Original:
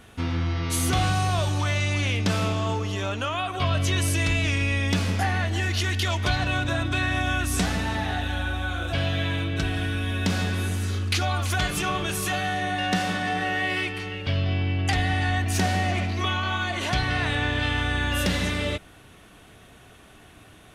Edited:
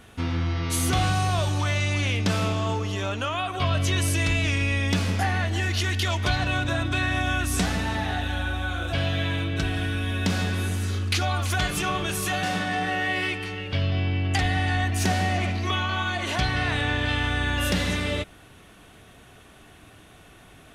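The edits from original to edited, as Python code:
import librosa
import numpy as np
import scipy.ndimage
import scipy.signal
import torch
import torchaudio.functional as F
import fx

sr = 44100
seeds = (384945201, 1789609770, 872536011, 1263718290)

y = fx.edit(x, sr, fx.cut(start_s=12.43, length_s=0.54), tone=tone)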